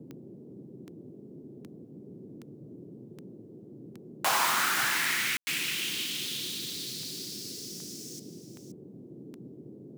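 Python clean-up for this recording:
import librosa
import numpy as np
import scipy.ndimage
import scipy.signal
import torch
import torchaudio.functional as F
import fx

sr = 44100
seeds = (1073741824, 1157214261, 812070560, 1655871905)

y = fx.fix_declick_ar(x, sr, threshold=10.0)
y = fx.fix_ambience(y, sr, seeds[0], print_start_s=3.3, print_end_s=3.8, start_s=5.37, end_s=5.47)
y = fx.noise_reduce(y, sr, print_start_s=3.3, print_end_s=3.8, reduce_db=29.0)
y = fx.fix_echo_inverse(y, sr, delay_ms=523, level_db=-12.5)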